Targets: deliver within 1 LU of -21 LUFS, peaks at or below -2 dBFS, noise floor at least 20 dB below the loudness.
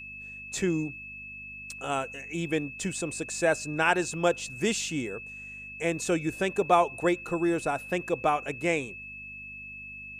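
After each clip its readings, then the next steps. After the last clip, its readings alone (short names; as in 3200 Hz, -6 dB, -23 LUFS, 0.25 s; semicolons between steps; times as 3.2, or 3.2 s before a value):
hum 50 Hz; harmonics up to 250 Hz; hum level -51 dBFS; steady tone 2600 Hz; tone level -40 dBFS; loudness -28.5 LUFS; peak -9.0 dBFS; loudness target -21.0 LUFS
-> de-hum 50 Hz, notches 5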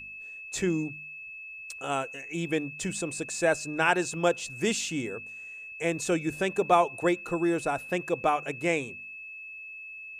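hum none; steady tone 2600 Hz; tone level -40 dBFS
-> notch 2600 Hz, Q 30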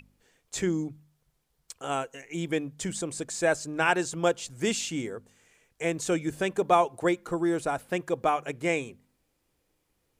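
steady tone none; loudness -29.0 LUFS; peak -9.0 dBFS; loudness target -21.0 LUFS
-> gain +8 dB; limiter -2 dBFS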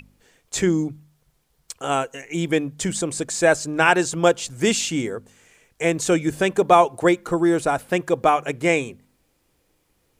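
loudness -21.0 LUFS; peak -2.0 dBFS; noise floor -67 dBFS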